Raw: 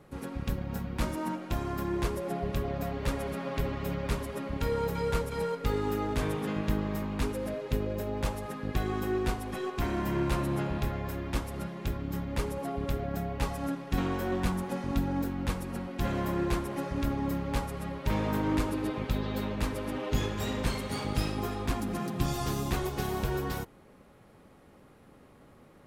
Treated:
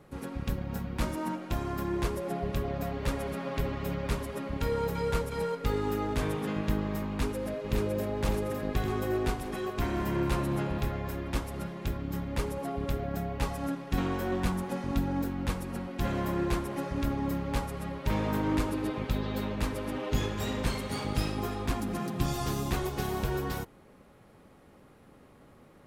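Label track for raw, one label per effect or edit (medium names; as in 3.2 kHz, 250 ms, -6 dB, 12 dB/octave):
7.080000	8.170000	echo throw 560 ms, feedback 65%, level -4 dB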